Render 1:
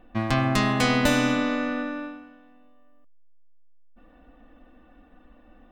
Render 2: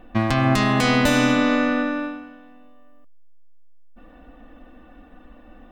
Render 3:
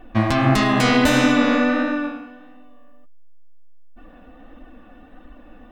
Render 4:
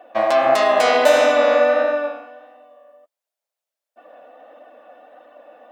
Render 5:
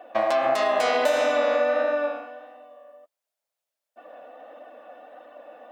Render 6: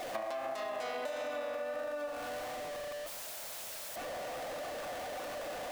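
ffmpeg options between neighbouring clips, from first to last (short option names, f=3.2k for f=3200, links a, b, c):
-af "alimiter=limit=-15dB:level=0:latency=1:release=156,volume=7dB"
-af "flanger=delay=2.7:depth=9.7:regen=-18:speed=1.5:shape=sinusoidal,volume=5dB"
-af "highpass=f=600:t=q:w=4.9,volume=-1.5dB"
-af "acompressor=threshold=-21dB:ratio=3"
-af "aeval=exprs='val(0)+0.5*0.0316*sgn(val(0))':c=same,acompressor=threshold=-29dB:ratio=8,volume=-6.5dB"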